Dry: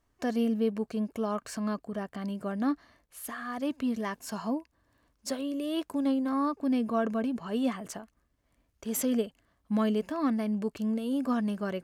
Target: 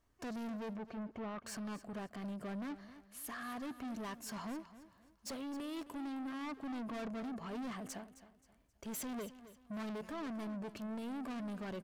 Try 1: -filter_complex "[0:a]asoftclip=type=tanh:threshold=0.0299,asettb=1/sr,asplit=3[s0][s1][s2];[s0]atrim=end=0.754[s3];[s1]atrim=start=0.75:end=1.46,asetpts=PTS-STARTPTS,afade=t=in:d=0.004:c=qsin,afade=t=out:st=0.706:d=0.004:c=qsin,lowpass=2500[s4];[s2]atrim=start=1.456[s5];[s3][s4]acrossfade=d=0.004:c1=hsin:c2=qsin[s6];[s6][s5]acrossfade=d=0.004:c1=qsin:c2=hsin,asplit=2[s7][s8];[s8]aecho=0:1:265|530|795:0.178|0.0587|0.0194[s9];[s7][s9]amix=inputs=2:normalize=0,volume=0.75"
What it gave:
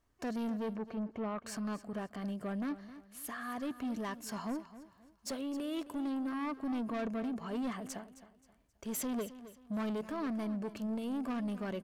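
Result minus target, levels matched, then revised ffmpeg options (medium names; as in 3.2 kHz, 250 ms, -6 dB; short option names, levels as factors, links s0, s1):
saturation: distortion -5 dB
-filter_complex "[0:a]asoftclip=type=tanh:threshold=0.0126,asettb=1/sr,asplit=3[s0][s1][s2];[s0]atrim=end=0.754[s3];[s1]atrim=start=0.75:end=1.46,asetpts=PTS-STARTPTS,afade=t=in:d=0.004:c=qsin,afade=t=out:st=0.706:d=0.004:c=qsin,lowpass=2500[s4];[s2]atrim=start=1.456[s5];[s3][s4]acrossfade=d=0.004:c1=hsin:c2=qsin[s6];[s6][s5]acrossfade=d=0.004:c1=qsin:c2=hsin,asplit=2[s7][s8];[s8]aecho=0:1:265|530|795:0.178|0.0587|0.0194[s9];[s7][s9]amix=inputs=2:normalize=0,volume=0.75"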